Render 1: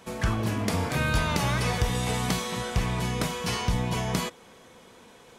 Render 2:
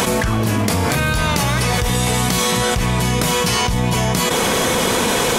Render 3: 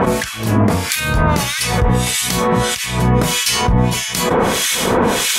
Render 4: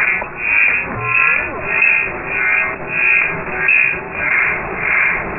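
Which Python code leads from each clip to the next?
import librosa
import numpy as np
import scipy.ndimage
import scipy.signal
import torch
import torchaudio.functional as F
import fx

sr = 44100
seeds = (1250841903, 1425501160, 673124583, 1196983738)

y1 = fx.high_shelf(x, sr, hz=6700.0, db=7.5)
y1 = fx.env_flatten(y1, sr, amount_pct=100)
y1 = y1 * librosa.db_to_amplitude(2.5)
y2 = fx.harmonic_tremolo(y1, sr, hz=1.6, depth_pct=100, crossover_hz=1700.0)
y2 = y2 * librosa.db_to_amplitude(6.0)
y3 = fx.delta_mod(y2, sr, bps=32000, step_db=-19.0)
y3 = fx.freq_invert(y3, sr, carrier_hz=2600)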